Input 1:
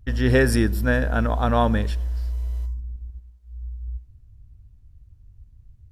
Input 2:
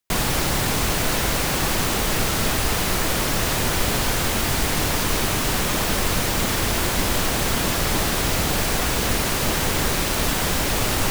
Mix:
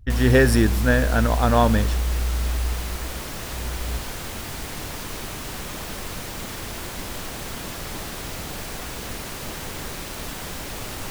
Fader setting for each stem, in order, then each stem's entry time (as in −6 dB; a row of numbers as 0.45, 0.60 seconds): +2.0, −11.0 decibels; 0.00, 0.00 seconds